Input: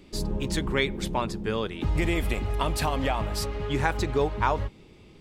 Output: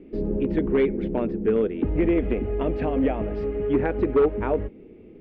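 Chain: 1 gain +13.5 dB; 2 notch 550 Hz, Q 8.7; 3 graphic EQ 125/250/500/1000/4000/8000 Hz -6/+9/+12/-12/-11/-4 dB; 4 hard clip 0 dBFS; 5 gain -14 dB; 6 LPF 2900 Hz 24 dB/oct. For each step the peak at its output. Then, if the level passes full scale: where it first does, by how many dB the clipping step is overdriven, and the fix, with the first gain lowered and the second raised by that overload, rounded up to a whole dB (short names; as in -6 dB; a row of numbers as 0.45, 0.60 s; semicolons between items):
+5.5, +5.5, +8.0, 0.0, -14.0, -13.0 dBFS; step 1, 8.0 dB; step 1 +5.5 dB, step 5 -6 dB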